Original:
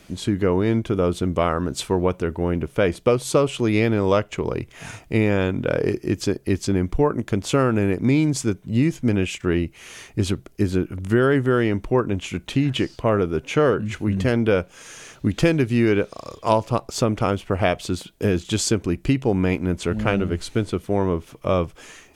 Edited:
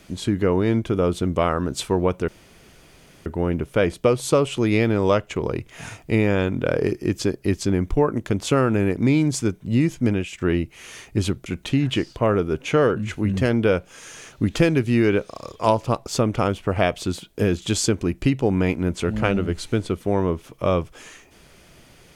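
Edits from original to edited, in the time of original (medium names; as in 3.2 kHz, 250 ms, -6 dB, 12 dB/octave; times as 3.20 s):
2.28 s: insert room tone 0.98 s
9.10–9.35 s: fade out, to -8.5 dB
10.48–12.29 s: delete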